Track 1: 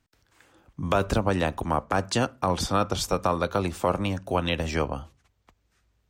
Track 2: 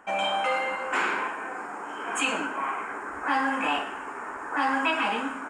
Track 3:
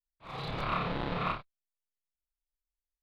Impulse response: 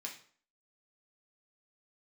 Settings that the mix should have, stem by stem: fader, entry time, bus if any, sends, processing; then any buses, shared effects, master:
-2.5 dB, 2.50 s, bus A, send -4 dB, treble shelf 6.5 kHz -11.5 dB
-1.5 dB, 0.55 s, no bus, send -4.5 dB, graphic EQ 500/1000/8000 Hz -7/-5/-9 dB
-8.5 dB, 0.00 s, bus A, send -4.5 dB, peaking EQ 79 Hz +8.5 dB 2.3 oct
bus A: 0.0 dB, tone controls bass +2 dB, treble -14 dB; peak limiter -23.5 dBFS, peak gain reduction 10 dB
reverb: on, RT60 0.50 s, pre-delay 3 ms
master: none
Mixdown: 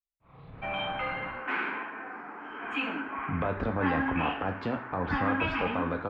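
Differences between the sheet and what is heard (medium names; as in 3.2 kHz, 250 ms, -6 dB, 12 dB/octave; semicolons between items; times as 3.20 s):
stem 3 -8.5 dB -> -15.5 dB; master: extra distance through air 370 m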